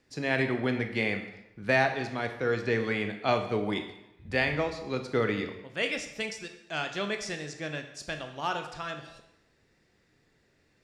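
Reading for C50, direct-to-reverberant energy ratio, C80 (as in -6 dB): 8.5 dB, 6.0 dB, 11.0 dB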